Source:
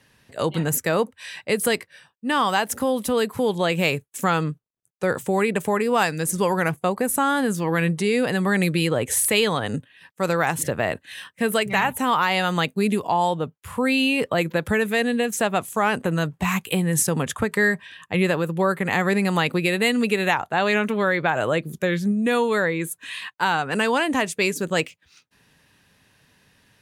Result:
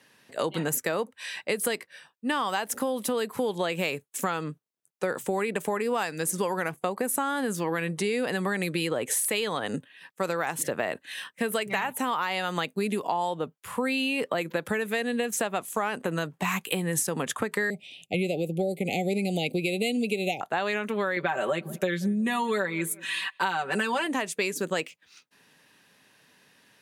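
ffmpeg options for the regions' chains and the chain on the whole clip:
-filter_complex "[0:a]asettb=1/sr,asplit=3[a][b][c];[a]atrim=end=17.704[d];[b]atrim=start=17.7:end=20.41,asetpts=PTS-STARTPTS,afade=t=in:d=0.004:c=qsin,afade=t=out:st=2.706:d=0.004:c=qsin,asuperstop=centerf=1300:order=20:qfactor=0.96,lowshelf=f=160:g=8[e];[c]atrim=start=20.406[f];[d][e]acrossfade=d=0.004:c1=hsin:c2=qsin[g];[g][f]acrossfade=d=0.004:c1=qsin:c2=hsin,asettb=1/sr,asplit=3[h][i][j];[h]atrim=end=21.164[k];[i]atrim=start=21.16:end=24.07,asetpts=PTS-STARTPTS,afade=t=in:d=0.004:c=qsin,afade=t=out:st=2.906:d=0.004:c=qsin,aecho=1:1:5.2:0.93,atrim=end_sample=128331,asplit=2[l][m];[m]adelay=182,lowpass=f=1.3k:p=1,volume=-24dB,asplit=2[n][o];[o]adelay=182,lowpass=f=1.3k:p=1,volume=0.34[p];[l][n][p]amix=inputs=3:normalize=0,atrim=end_sample=128331[q];[j]atrim=start=24.066[r];[k][q]acrossfade=d=0.004:c1=hsin:c2=qsin[s];[s][r]acrossfade=d=0.004:c1=qsin:c2=hsin,highpass=220,acompressor=threshold=-24dB:ratio=6"

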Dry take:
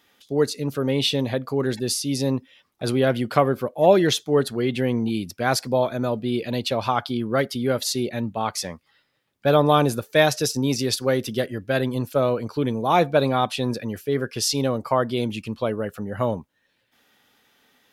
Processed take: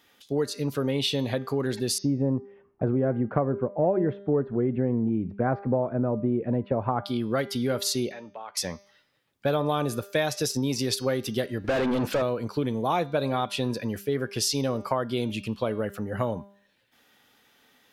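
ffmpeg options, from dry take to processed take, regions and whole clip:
-filter_complex "[0:a]asettb=1/sr,asplit=3[a][b][c];[a]atrim=end=1.984[d];[b]atrim=start=1.98:end=7.04,asetpts=PTS-STARTPTS,afade=t=in:d=0.004:c=qsin,afade=t=out:st=5.056:d=0.004:c=qsin,lowpass=f=1.9k:w=0.5412,lowpass=f=1.9k:w=1.3066,tiltshelf=f=1.2k:g=8[e];[c]atrim=start=7.036[f];[d][e]acrossfade=d=0.004:c1=hsin:c2=qsin[g];[g][f]acrossfade=d=0.004:c1=qsin:c2=hsin,asettb=1/sr,asplit=3[h][i][j];[h]atrim=end=8.124[k];[i]atrim=start=8.12:end=8.57,asetpts=PTS-STARTPTS,afade=t=in:d=0.004:c=qsin,afade=t=out:st=0.446:d=0.004:c=qsin,acrossover=split=380 3200:gain=0.0794 1 0.0708[l][m][n];[l][m][n]amix=inputs=3:normalize=0,acompressor=threshold=-37dB:ratio=4:attack=3.2:release=140:knee=1:detection=peak[o];[j]atrim=start=8.566[p];[k][o]acrossfade=d=0.004:c1=hsin:c2=qsin[q];[q][p]acrossfade=d=0.004:c1=qsin:c2=hsin,asettb=1/sr,asplit=3[r][s][t];[r]atrim=end=11.644[u];[s]atrim=start=11.64:end=12.22,asetpts=PTS-STARTPTS,afade=t=in:d=0.004:c=qsin,afade=t=out:st=0.576:d=0.004:c=qsin,highshelf=f=5.6k:g=-8,acompressor=threshold=-28dB:ratio=2.5:attack=3.2:release=140:knee=1:detection=peak,asplit=2[v][w];[w]highpass=f=720:p=1,volume=34dB,asoftclip=type=tanh:threshold=-12.5dB[x];[v][x]amix=inputs=2:normalize=0,lowpass=f=1.4k:p=1,volume=-6dB[y];[t]atrim=start=12.216[z];[u][y]acrossfade=d=0.004:c1=hsin:c2=qsin[aa];[aa][z]acrossfade=d=0.004:c1=qsin:c2=hsin,bandreject=f=199.8:t=h:w=4,bandreject=f=399.6:t=h:w=4,bandreject=f=599.4:t=h:w=4,bandreject=f=799.2:t=h:w=4,bandreject=f=999:t=h:w=4,bandreject=f=1.1988k:t=h:w=4,bandreject=f=1.3986k:t=h:w=4,bandreject=f=1.5984k:t=h:w=4,bandreject=f=1.7982k:t=h:w=4,bandreject=f=1.998k:t=h:w=4,bandreject=f=2.1978k:t=h:w=4,bandreject=f=2.3976k:t=h:w=4,bandreject=f=2.5974k:t=h:w=4,bandreject=f=2.7972k:t=h:w=4,bandreject=f=2.997k:t=h:w=4,bandreject=f=3.1968k:t=h:w=4,bandreject=f=3.3966k:t=h:w=4,bandreject=f=3.5964k:t=h:w=4,bandreject=f=3.7962k:t=h:w=4,bandreject=f=3.996k:t=h:w=4,bandreject=f=4.1958k:t=h:w=4,bandreject=f=4.3956k:t=h:w=4,bandreject=f=4.5954k:t=h:w=4,bandreject=f=4.7952k:t=h:w=4,bandreject=f=4.995k:t=h:w=4,bandreject=f=5.1948k:t=h:w=4,bandreject=f=5.3946k:t=h:w=4,bandreject=f=5.5944k:t=h:w=4,bandreject=f=5.7942k:t=h:w=4,bandreject=f=5.994k:t=h:w=4,bandreject=f=6.1938k:t=h:w=4,bandreject=f=6.3936k:t=h:w=4,acompressor=threshold=-23dB:ratio=4"

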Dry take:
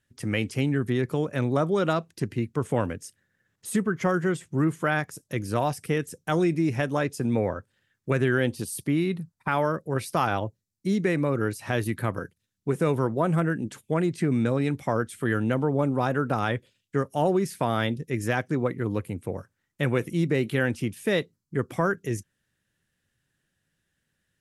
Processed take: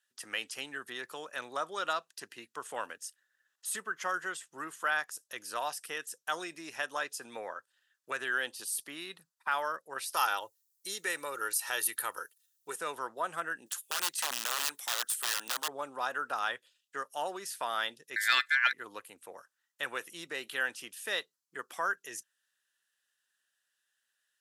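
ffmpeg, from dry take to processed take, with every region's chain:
-filter_complex "[0:a]asettb=1/sr,asplit=3[a][b][c];[a]atrim=end=10.144[d];[b]atrim=start=10.14:end=12.76,asetpts=PTS-STARTPTS,afade=t=in:d=0.004:c=qsin,afade=t=out:st=2.616:d=0.004:c=qsin,aemphasis=mode=production:type=50fm,aecho=1:1:2.2:0.42,atrim=end_sample=115542[e];[c]atrim=start=12.756[f];[d][e]acrossfade=d=0.004:c1=hsin:c2=qsin[g];[g][f]acrossfade=d=0.004:c1=qsin:c2=hsin,asettb=1/sr,asplit=3[h][i][j];[h]atrim=end=13.664[k];[i]atrim=start=13.66:end=15.68,asetpts=PTS-STARTPTS,afade=t=in:d=0.004:c=qsin,afade=t=out:st=2.016:d=0.004:c=qsin,highpass=73,aemphasis=mode=production:type=bsi,aeval=exprs='(mod(12.6*val(0)+1,2)-1)/12.6':c=same[l];[j]atrim=start=15.676[m];[k][l]acrossfade=d=0.004:c1=hsin:c2=qsin[n];[n][m]acrossfade=d=0.004:c1=qsin:c2=hsin,asettb=1/sr,asplit=3[o][p][q];[o]atrim=end=18.164[r];[p]atrim=start=18.16:end=18.73,asetpts=PTS-STARTPTS,afade=t=in:d=0.004:c=qsin,afade=t=out:st=0.566:d=0.004:c=qsin,aeval=exprs='val(0)*sin(2*PI*1900*n/s)':c=same,acontrast=43[s];[q]atrim=start=18.726[t];[r][s]acrossfade=d=0.004:c1=hsin:c2=qsin[u];[u][t]acrossfade=d=0.004:c1=qsin:c2=hsin,highpass=1.2k,equalizer=f=2.2k:t=o:w=0.24:g=-11.5"

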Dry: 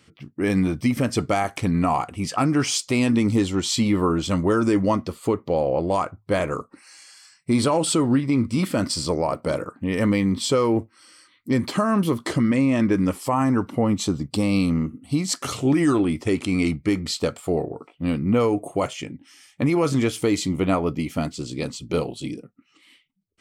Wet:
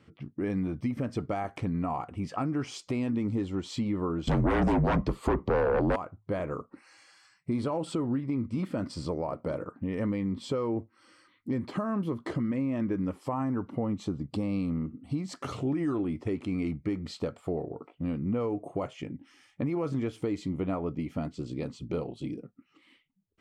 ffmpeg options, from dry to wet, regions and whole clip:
-filter_complex "[0:a]asettb=1/sr,asplit=3[a][b][c];[a]atrim=end=4.274[d];[b]atrim=start=4.27:end=5.96,asetpts=PTS-STARTPTS,afade=t=in:d=0.004:c=qsin,afade=t=out:st=1.686:d=0.004:c=qsin,afreqshift=-40,aeval=exprs='0.447*sin(PI/2*3.98*val(0)/0.447)':c=same[e];[c]atrim=start=5.956[f];[d][e]acrossfade=d=0.004:c1=hsin:c2=qsin[g];[g][f]acrossfade=d=0.004:c1=qsin:c2=hsin,lowpass=f=1.1k:p=1,acompressor=threshold=-35dB:ratio=2"

